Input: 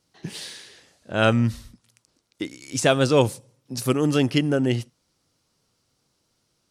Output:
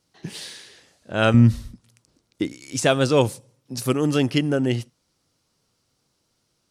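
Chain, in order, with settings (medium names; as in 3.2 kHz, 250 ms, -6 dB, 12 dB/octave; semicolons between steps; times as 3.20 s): 1.34–2.53 s: bass shelf 450 Hz +8.5 dB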